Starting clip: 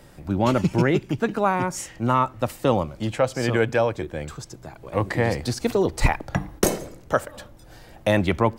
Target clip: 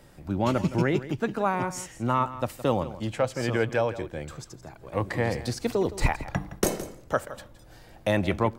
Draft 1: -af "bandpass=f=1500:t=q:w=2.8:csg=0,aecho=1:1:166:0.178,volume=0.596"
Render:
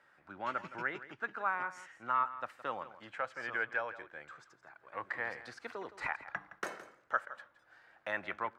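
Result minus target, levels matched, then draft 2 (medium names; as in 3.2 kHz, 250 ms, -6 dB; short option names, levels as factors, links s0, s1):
2 kHz band +8.0 dB
-af "aecho=1:1:166:0.178,volume=0.596"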